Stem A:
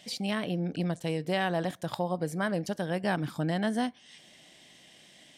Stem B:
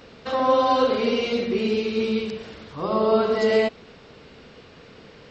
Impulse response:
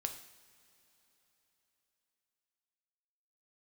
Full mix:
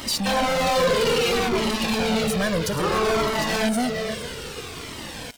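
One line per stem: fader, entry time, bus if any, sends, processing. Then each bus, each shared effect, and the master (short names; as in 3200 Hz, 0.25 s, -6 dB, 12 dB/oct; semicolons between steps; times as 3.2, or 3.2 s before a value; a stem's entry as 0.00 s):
-3.0 dB, 0.00 s, no send, echo send -17.5 dB, dry
-2.0 dB, 0.00 s, no send, echo send -17 dB, soft clip -16.5 dBFS, distortion -15 dB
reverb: off
echo: echo 0.459 s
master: high shelf 6100 Hz +11 dB; sample leveller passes 5; cascading flanger falling 0.61 Hz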